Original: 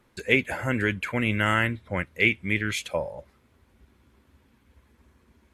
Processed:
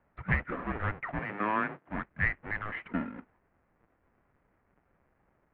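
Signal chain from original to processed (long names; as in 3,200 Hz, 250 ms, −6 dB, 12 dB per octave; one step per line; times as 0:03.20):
each half-wave held at its own peak
single-sideband voice off tune −320 Hz 340–2,400 Hz
0:01.19–0:01.88: high-pass filter 150 Hz 24 dB per octave
level −7 dB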